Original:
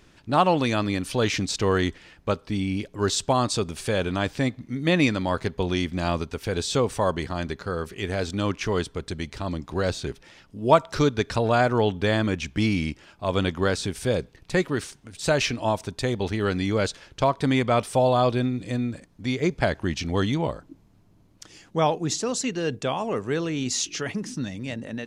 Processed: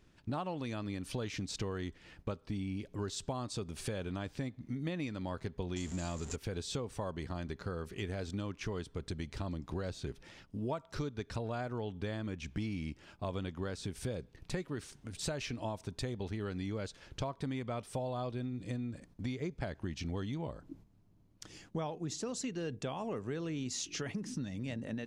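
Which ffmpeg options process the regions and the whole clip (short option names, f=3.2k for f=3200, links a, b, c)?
-filter_complex "[0:a]asettb=1/sr,asplit=3[a][b][c];[a]atrim=end=5.764[d];[b]atrim=start=5.76:end=6.36,asetpts=PTS-STARTPTS,afade=t=in:d=0.004:c=qsin,afade=t=out:st=0.596:d=0.004:c=qsin,aeval=exprs='val(0)+0.5*0.0335*sgn(val(0))':c=same,lowpass=f=7.2k:t=q:w=13[e];[c]atrim=start=6.356[f];[d][e]acrossfade=d=0.004:c1=hsin:c2=qsin[g];[g][f]acrossfade=d=0.004:c1=qsin:c2=hsin,agate=range=-8dB:threshold=-52dB:ratio=16:detection=peak,lowshelf=f=340:g=6,acompressor=threshold=-30dB:ratio=6,volume=-5.5dB"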